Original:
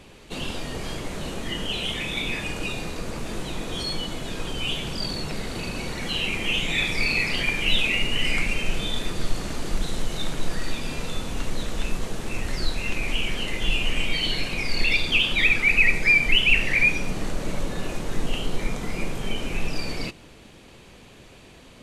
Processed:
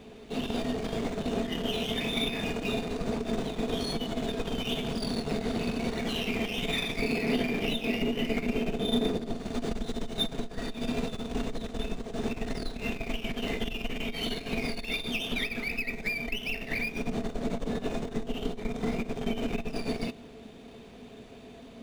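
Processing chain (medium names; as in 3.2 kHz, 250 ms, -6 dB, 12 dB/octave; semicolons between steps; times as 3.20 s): 7.02–9.37 s: peaking EQ 320 Hz +9 dB 2.6 oct; compression 16:1, threshold -24 dBFS, peak gain reduction 13.5 dB; valve stage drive 22 dB, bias 0.8; small resonant body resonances 240/430/670/3600 Hz, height 14 dB, ringing for 65 ms; decimation joined by straight lines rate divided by 3×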